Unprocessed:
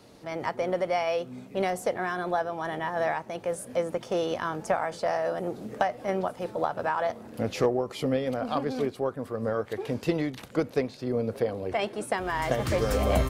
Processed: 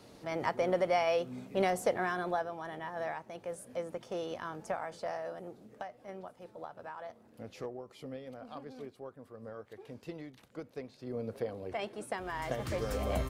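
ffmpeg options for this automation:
-af "volume=6dB,afade=t=out:st=1.95:d=0.7:silence=0.398107,afade=t=out:st=5.06:d=0.61:silence=0.446684,afade=t=in:st=10.75:d=0.53:silence=0.398107"

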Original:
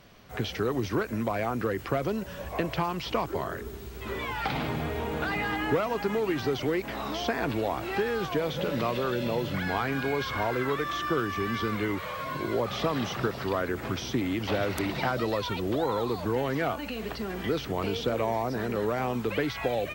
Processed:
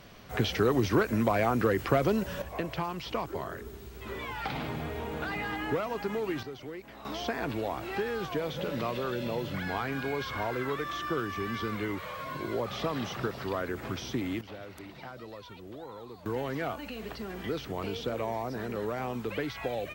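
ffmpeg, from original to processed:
-af "asetnsamples=n=441:p=0,asendcmd='2.42 volume volume -4.5dB;6.43 volume volume -13.5dB;7.05 volume volume -4dB;14.41 volume volume -16dB;16.26 volume volume -5dB',volume=3dB"

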